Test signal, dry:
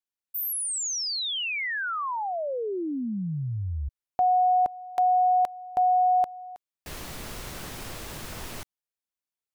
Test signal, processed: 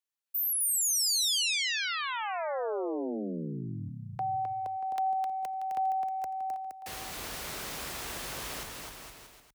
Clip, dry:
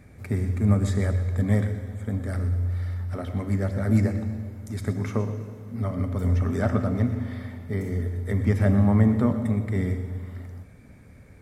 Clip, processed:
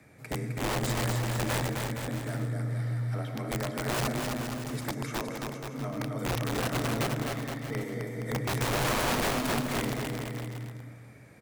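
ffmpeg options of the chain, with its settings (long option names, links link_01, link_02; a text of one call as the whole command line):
ffmpeg -i in.wav -filter_complex "[0:a]lowshelf=frequency=290:gain=-11,acrossover=split=490|2900[link_01][link_02][link_03];[link_02]acompressor=threshold=-37dB:ratio=6:attack=1.8:release=29:knee=6:detection=rms[link_04];[link_01][link_04][link_03]amix=inputs=3:normalize=0,afreqshift=31,aeval=exprs='(mod(17.8*val(0)+1,2)-1)/17.8':channel_layout=same,aecho=1:1:260|468|634.4|767.5|874:0.631|0.398|0.251|0.158|0.1" out.wav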